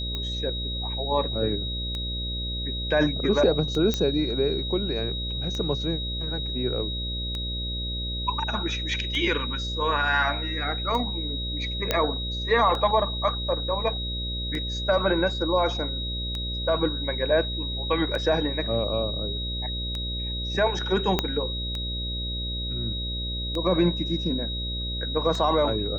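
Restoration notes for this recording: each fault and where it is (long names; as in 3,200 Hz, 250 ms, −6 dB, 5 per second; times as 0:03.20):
mains buzz 60 Hz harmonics 10 −32 dBFS
scratch tick 33 1/3 rpm −18 dBFS
whistle 3,800 Hz −31 dBFS
0:03.94: click −10 dBFS
0:11.91: click −7 dBFS
0:21.19: click −7 dBFS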